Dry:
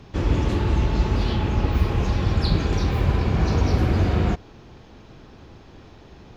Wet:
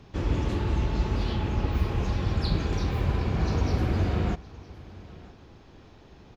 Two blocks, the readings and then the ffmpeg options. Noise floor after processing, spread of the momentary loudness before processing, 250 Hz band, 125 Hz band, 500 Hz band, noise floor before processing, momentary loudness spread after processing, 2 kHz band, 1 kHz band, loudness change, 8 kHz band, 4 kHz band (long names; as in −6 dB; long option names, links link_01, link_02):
−52 dBFS, 2 LU, −5.5 dB, −5.5 dB, −5.5 dB, −47 dBFS, 19 LU, −5.5 dB, −5.5 dB, −5.5 dB, can't be measured, −5.5 dB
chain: -af "aecho=1:1:965:0.0944,volume=-5.5dB"